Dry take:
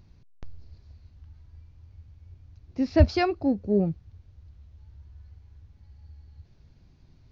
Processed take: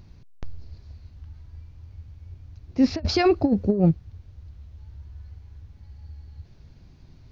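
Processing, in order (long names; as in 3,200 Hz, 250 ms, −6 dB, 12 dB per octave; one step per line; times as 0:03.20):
0:02.83–0:03.91: compressor whose output falls as the input rises −25 dBFS, ratio −0.5
level +6.5 dB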